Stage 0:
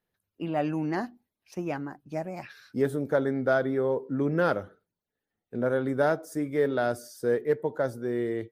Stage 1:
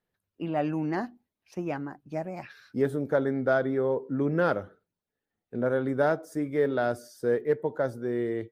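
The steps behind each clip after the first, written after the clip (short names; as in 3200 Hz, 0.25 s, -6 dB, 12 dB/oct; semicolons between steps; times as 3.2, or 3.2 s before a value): high shelf 4900 Hz -6.5 dB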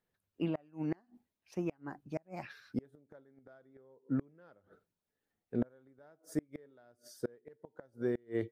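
flipped gate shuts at -21 dBFS, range -33 dB; noise-modulated level, depth 55%; gain +1 dB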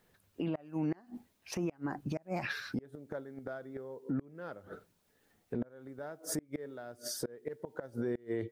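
compressor 16:1, threshold -42 dBFS, peak gain reduction 16 dB; limiter -42 dBFS, peak gain reduction 11 dB; gain +16 dB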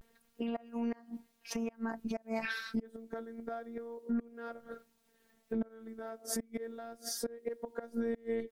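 robotiser 228 Hz; vibrato 0.3 Hz 38 cents; gain +3 dB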